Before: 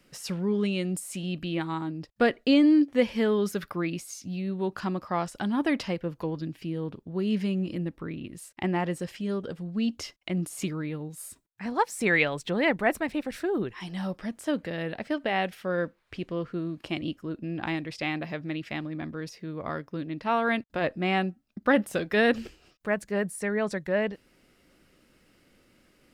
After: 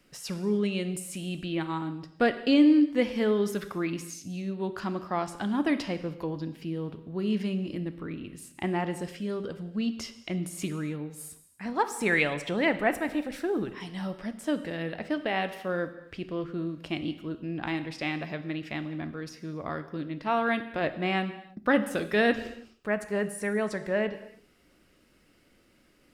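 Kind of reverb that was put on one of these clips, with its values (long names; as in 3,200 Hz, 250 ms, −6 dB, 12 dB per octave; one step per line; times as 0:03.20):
reverb whose tail is shaped and stops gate 350 ms falling, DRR 9.5 dB
level −1.5 dB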